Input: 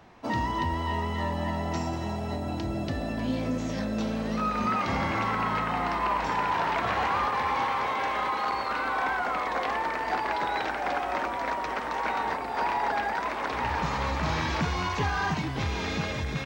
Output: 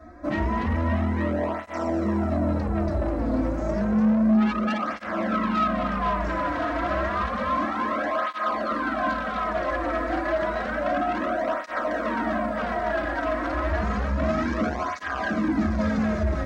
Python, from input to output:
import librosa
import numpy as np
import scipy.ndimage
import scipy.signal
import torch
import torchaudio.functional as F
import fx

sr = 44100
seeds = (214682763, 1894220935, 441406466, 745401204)

p1 = fx.highpass(x, sr, hz=60.0, slope=6)
p2 = fx.fixed_phaser(p1, sr, hz=590.0, stages=8)
p3 = p2 + 0.56 * np.pad(p2, (int(3.1 * sr / 1000.0), 0))[:len(p2)]
p4 = fx.rev_fdn(p3, sr, rt60_s=0.73, lf_ratio=0.75, hf_ratio=0.4, size_ms=28.0, drr_db=2.0)
p5 = fx.rider(p4, sr, range_db=10, speed_s=0.5)
p6 = p4 + F.gain(torch.from_numpy(p5), 1.0).numpy()
p7 = fx.tilt_eq(p6, sr, slope=-3.0)
p8 = 10.0 ** (-17.0 / 20.0) * np.tanh(p7 / 10.0 ** (-17.0 / 20.0))
p9 = p8 + fx.echo_single(p8, sr, ms=205, db=-12.0, dry=0)
y = fx.flanger_cancel(p9, sr, hz=0.3, depth_ms=5.2)